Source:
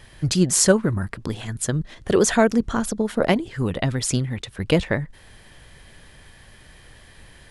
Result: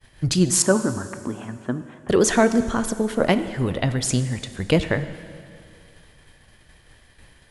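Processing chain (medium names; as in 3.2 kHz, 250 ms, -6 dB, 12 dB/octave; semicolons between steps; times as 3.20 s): expander -41 dBFS; 0.62–2.09 s: cabinet simulation 150–2300 Hz, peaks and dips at 160 Hz -9 dB, 250 Hz +5 dB, 480 Hz -6 dB, 990 Hz +4 dB, 2 kHz -9 dB; plate-style reverb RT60 2.3 s, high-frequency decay 0.9×, DRR 10.5 dB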